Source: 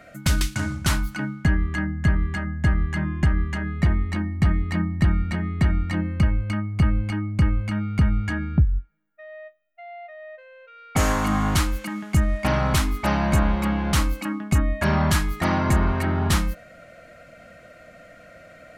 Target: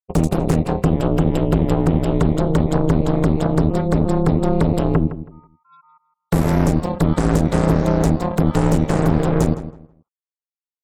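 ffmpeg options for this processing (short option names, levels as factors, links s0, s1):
-filter_complex "[0:a]agate=range=0.2:threshold=0.0141:ratio=16:detection=peak,afftfilt=real='re*gte(hypot(re,im),0.0141)':imag='im*gte(hypot(re,im),0.0141)':win_size=1024:overlap=0.75,acrossover=split=6500[s0][s1];[s1]acompressor=threshold=0.00398:ratio=4:attack=1:release=60[s2];[s0][s2]amix=inputs=2:normalize=0,firequalizer=gain_entry='entry(190,0);entry(1500,-19);entry(4300,-3);entry(12000,-18)':delay=0.05:min_phase=1,acrossover=split=240|2800[s3][s4][s5];[s3]acompressor=threshold=0.0447:ratio=4[s6];[s4]acompressor=threshold=0.00891:ratio=4[s7];[s5]acompressor=threshold=0.00355:ratio=4[s8];[s6][s7][s8]amix=inputs=3:normalize=0,aeval=exprs='0.168*(cos(1*acos(clip(val(0)/0.168,-1,1)))-cos(1*PI/2))+0.0596*(cos(4*acos(clip(val(0)/0.168,-1,1)))-cos(4*PI/2))+0.0211*(cos(5*acos(clip(val(0)/0.168,-1,1)))-cos(5*PI/2))+0.0473*(cos(8*acos(clip(val(0)/0.168,-1,1)))-cos(8*PI/2))':c=same,aeval=exprs='val(0)*sin(2*PI*94*n/s)':c=same,asplit=2[s9][s10];[s10]adelay=280,lowpass=f=1500:p=1,volume=0.237,asplit=2[s11][s12];[s12]adelay=280,lowpass=f=1500:p=1,volume=0.24,asplit=2[s13][s14];[s14]adelay=280,lowpass=f=1500:p=1,volume=0.24[s15];[s11][s13][s15]amix=inputs=3:normalize=0[s16];[s9][s16]amix=inputs=2:normalize=0,asetrate=76440,aresample=44100,volume=2.24"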